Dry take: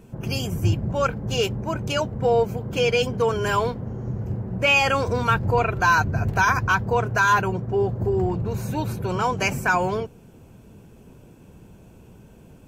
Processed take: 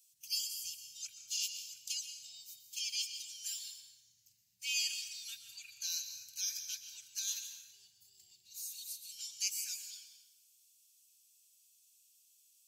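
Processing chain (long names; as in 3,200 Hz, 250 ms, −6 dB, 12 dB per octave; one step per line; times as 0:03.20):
inverse Chebyshev high-pass filter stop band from 1,300 Hz, stop band 60 dB
convolution reverb RT60 1.2 s, pre-delay 108 ms, DRR 6.5 dB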